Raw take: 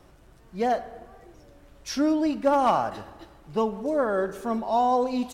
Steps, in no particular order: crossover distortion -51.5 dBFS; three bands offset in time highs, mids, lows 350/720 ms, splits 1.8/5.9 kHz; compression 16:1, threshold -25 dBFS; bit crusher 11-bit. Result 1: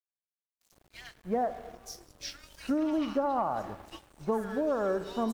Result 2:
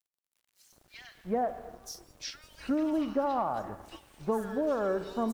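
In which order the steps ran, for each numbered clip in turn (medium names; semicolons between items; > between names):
three bands offset in time > crossover distortion > bit crusher > compression; crossover distortion > compression > three bands offset in time > bit crusher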